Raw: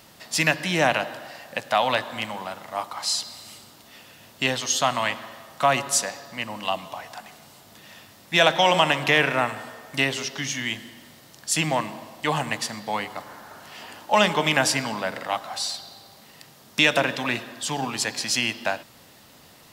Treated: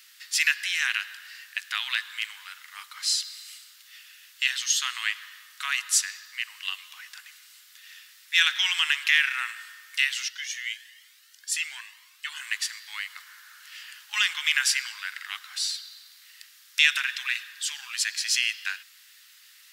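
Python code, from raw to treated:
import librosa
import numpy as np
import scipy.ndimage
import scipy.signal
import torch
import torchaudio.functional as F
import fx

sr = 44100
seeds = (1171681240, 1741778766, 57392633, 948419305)

y = scipy.signal.sosfilt(scipy.signal.butter(6, 1500.0, 'highpass', fs=sr, output='sos'), x)
y = fx.comb_cascade(y, sr, direction='rising', hz=1.0, at=(10.28, 12.41), fade=0.02)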